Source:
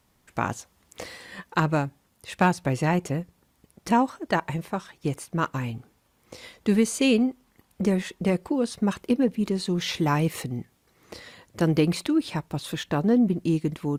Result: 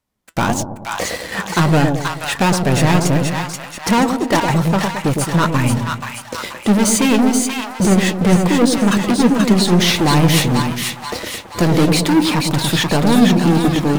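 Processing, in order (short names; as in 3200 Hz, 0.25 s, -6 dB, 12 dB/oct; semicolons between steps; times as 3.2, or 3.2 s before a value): sample leveller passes 5; split-band echo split 800 Hz, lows 0.109 s, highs 0.481 s, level -4 dB; flange 1.6 Hz, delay 3.1 ms, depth 3.1 ms, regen +73%; gain +3 dB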